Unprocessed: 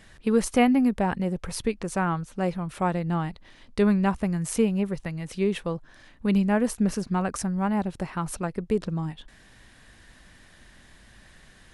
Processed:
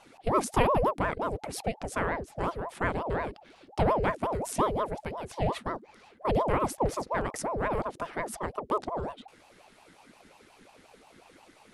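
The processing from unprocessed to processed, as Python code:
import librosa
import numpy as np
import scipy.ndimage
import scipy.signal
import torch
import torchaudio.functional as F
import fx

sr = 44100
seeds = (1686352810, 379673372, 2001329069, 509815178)

y = fx.ring_lfo(x, sr, carrier_hz=540.0, swing_pct=60, hz=5.6)
y = F.gain(torch.from_numpy(y), -1.5).numpy()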